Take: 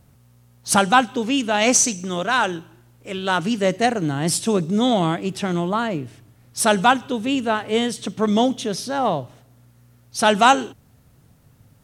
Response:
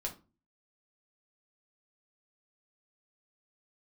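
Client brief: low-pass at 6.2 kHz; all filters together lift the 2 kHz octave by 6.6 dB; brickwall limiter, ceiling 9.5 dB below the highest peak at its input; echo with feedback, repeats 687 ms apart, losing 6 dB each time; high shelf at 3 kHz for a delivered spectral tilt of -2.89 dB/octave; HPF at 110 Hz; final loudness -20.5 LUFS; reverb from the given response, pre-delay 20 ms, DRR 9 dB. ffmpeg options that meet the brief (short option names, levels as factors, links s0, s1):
-filter_complex "[0:a]highpass=110,lowpass=6200,equalizer=f=2000:t=o:g=7,highshelf=f=3000:g=7.5,alimiter=limit=0.531:level=0:latency=1,aecho=1:1:687|1374|2061|2748|3435|4122:0.501|0.251|0.125|0.0626|0.0313|0.0157,asplit=2[s0][s1];[1:a]atrim=start_sample=2205,adelay=20[s2];[s1][s2]afir=irnorm=-1:irlink=0,volume=0.335[s3];[s0][s3]amix=inputs=2:normalize=0,volume=0.841"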